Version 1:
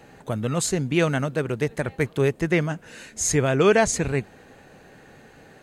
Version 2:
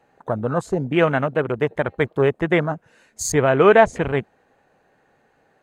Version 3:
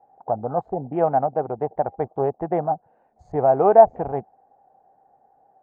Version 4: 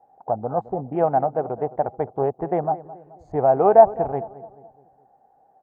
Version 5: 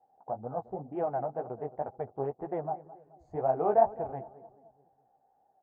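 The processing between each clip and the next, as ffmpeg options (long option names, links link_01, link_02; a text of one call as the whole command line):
ffmpeg -i in.wav -af "equalizer=frequency=880:width_type=o:width=2.3:gain=9.5,afwtdn=0.0398,volume=-1dB" out.wav
ffmpeg -i in.wav -af "lowpass=frequency=770:width_type=q:width=9.5,volume=-8.5dB" out.wav
ffmpeg -i in.wav -filter_complex "[0:a]asplit=2[link_01][link_02];[link_02]adelay=214,lowpass=frequency=1300:poles=1,volume=-16dB,asplit=2[link_03][link_04];[link_04]adelay=214,lowpass=frequency=1300:poles=1,volume=0.49,asplit=2[link_05][link_06];[link_06]adelay=214,lowpass=frequency=1300:poles=1,volume=0.49,asplit=2[link_07][link_08];[link_08]adelay=214,lowpass=frequency=1300:poles=1,volume=0.49[link_09];[link_01][link_03][link_05][link_07][link_09]amix=inputs=5:normalize=0" out.wav
ffmpeg -i in.wav -af "flanger=delay=7.5:depth=8.4:regen=-16:speed=2:shape=triangular,volume=-8dB" out.wav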